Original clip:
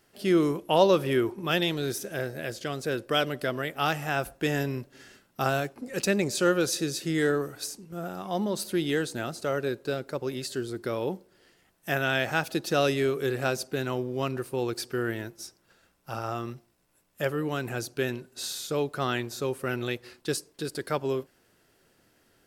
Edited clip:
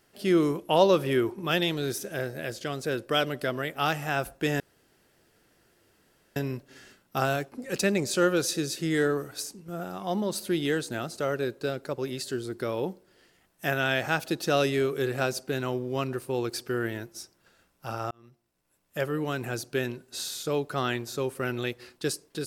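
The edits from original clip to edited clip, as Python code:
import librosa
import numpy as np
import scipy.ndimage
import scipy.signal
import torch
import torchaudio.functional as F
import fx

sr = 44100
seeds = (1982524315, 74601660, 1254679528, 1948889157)

y = fx.edit(x, sr, fx.insert_room_tone(at_s=4.6, length_s=1.76),
    fx.fade_in_span(start_s=16.35, length_s=1.02), tone=tone)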